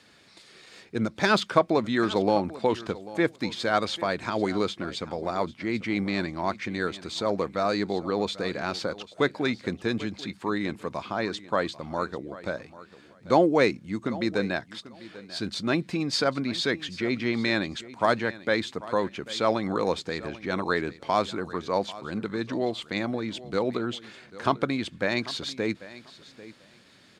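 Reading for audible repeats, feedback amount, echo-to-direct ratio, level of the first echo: 2, 17%, -17.5 dB, -17.5 dB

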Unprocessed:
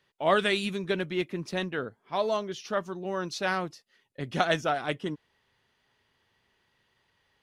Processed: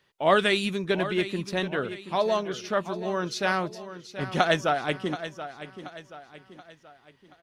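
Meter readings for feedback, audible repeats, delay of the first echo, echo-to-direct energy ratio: 43%, 4, 729 ms, -11.5 dB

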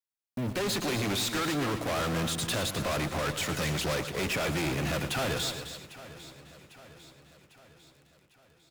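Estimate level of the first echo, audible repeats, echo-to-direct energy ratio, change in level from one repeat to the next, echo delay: -11.5 dB, 11, -7.0 dB, no regular repeats, 115 ms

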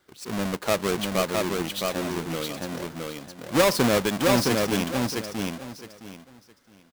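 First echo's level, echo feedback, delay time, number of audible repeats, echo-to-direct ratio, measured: -3.0 dB, 23%, 664 ms, 3, -3.0 dB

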